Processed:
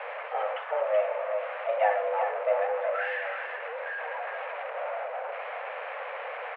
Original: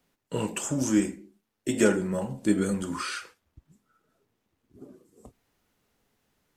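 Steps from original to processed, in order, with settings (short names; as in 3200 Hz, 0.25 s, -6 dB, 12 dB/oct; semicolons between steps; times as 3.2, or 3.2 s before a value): zero-crossing step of -23 dBFS; mistuned SSB +310 Hz 180–2200 Hz; echo 0.38 s -6.5 dB; gain -4.5 dB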